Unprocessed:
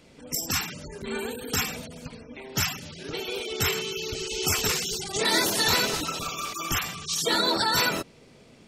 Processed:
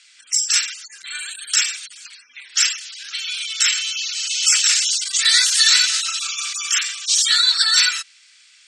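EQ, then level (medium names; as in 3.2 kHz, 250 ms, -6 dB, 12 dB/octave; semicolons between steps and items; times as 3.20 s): elliptic band-pass 1.5–8.5 kHz, stop band 40 dB; treble shelf 2.9 kHz +11 dB; +4.0 dB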